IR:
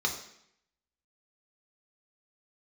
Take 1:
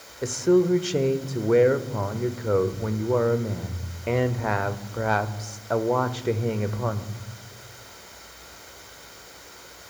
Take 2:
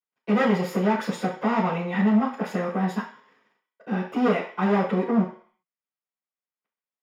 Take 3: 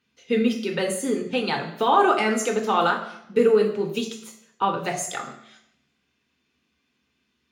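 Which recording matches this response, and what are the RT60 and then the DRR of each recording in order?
3; 1.1, 0.50, 0.70 seconds; 9.5, −12.5, 0.0 decibels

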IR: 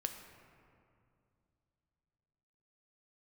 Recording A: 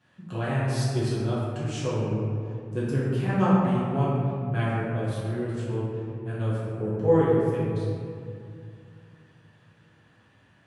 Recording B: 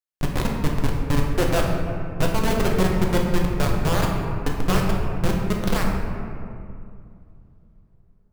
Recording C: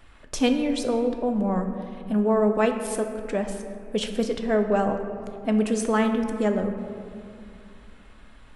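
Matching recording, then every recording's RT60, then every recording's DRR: C; 2.4, 2.4, 2.5 seconds; −9.5, −1.0, 5.0 decibels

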